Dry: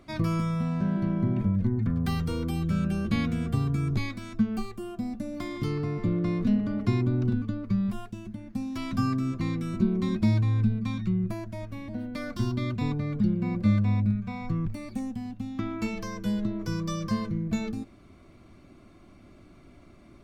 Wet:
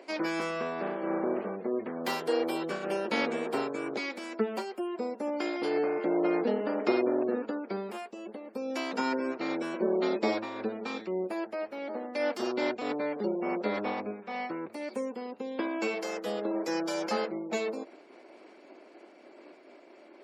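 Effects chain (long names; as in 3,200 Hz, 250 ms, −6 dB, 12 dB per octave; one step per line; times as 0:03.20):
lower of the sound and its delayed copy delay 0.41 ms
high-pass filter 350 Hz 24 dB per octave
gate on every frequency bin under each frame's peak −30 dB strong
parametric band 550 Hz +7.5 dB 1.7 octaves
amplitude modulation by smooth noise, depth 60%
level +6 dB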